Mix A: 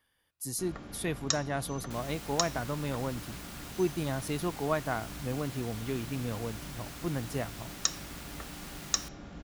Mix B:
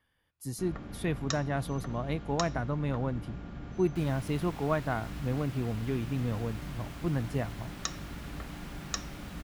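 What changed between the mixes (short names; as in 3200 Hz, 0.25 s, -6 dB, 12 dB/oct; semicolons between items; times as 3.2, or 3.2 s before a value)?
second sound: entry +2.05 s; master: add tone controls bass +5 dB, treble -9 dB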